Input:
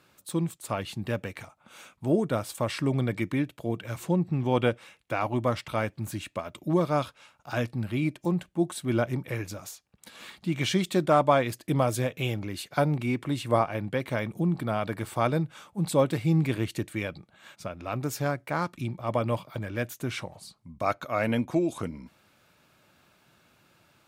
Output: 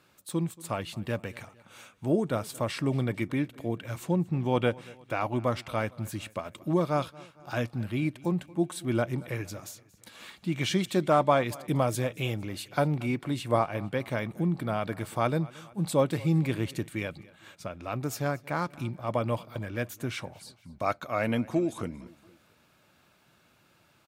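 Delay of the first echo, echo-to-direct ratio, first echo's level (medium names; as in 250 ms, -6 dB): 229 ms, -21.0 dB, -22.0 dB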